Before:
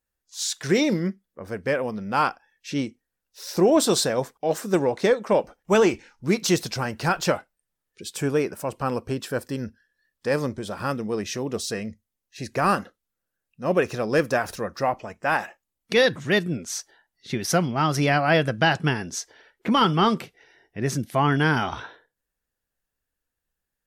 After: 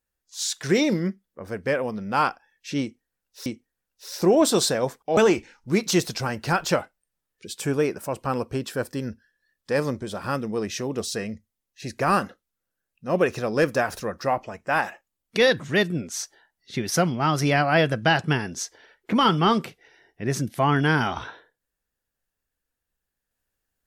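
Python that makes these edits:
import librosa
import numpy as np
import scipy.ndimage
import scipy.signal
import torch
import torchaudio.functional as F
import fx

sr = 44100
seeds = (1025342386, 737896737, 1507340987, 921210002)

y = fx.edit(x, sr, fx.repeat(start_s=2.81, length_s=0.65, count=2),
    fx.cut(start_s=4.52, length_s=1.21), tone=tone)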